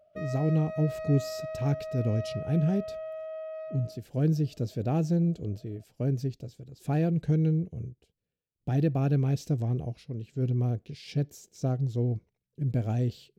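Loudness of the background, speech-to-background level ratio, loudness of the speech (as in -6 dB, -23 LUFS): -38.5 LUFS, 9.0 dB, -29.5 LUFS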